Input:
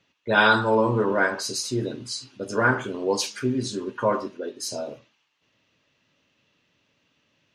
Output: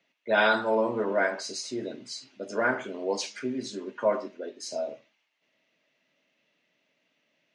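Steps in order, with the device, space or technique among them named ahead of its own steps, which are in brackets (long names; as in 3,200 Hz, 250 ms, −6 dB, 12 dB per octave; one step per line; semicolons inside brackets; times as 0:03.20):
television speaker (loudspeaker in its box 170–8,100 Hz, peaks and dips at 650 Hz +9 dB, 1,100 Hz −3 dB, 2,100 Hz +8 dB)
level −6.5 dB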